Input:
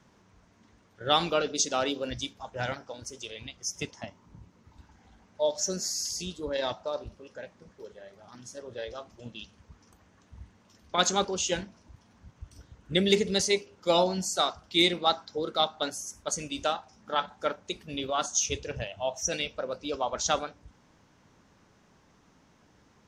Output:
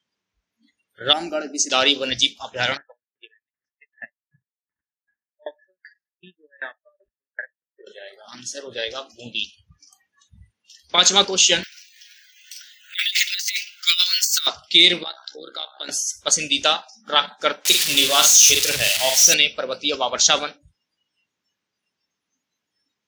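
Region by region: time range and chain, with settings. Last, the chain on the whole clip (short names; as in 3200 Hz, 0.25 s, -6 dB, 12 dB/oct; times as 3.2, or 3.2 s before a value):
1.13–1.7 LPF 12000 Hz 24 dB/oct + bell 2500 Hz -15 dB 1.7 oct + fixed phaser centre 720 Hz, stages 8
2.77–7.87 transient shaper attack +10 dB, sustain -6 dB + ladder low-pass 1800 Hz, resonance 85% + dB-ramp tremolo decaying 2.6 Hz, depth 35 dB
11.63–14.47 steep high-pass 1400 Hz 48 dB/oct + negative-ratio compressor -36 dBFS, ratio -0.5 + careless resampling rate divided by 2×, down filtered, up zero stuff
15.03–15.89 AM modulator 65 Hz, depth 65% + bell 1600 Hz +6.5 dB 0.31 oct + compressor 3:1, threshold -45 dBFS
17.65–19.34 switching spikes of -22 dBFS + doubler 47 ms -6 dB
whole clip: spectral noise reduction 29 dB; weighting filter D; maximiser +8 dB; gain -1 dB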